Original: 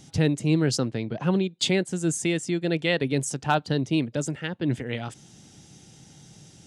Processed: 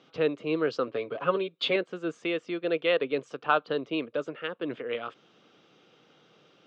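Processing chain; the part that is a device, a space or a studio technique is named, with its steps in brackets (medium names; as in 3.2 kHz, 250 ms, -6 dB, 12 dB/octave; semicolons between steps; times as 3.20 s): 0.87–1.76 s: comb 7.2 ms, depth 78%; phone earpiece (cabinet simulation 460–3200 Hz, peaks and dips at 480 Hz +7 dB, 830 Hz -8 dB, 1.2 kHz +10 dB, 1.9 kHz -7 dB)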